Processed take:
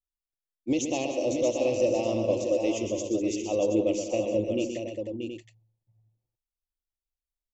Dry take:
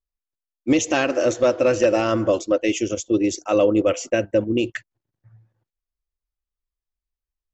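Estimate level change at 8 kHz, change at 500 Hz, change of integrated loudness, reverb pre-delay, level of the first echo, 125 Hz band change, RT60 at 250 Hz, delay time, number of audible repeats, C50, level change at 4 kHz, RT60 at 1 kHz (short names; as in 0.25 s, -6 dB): n/a, -6.5 dB, -7.0 dB, none, -7.5 dB, -6.5 dB, none, 0.125 s, 5, none, -7.5 dB, none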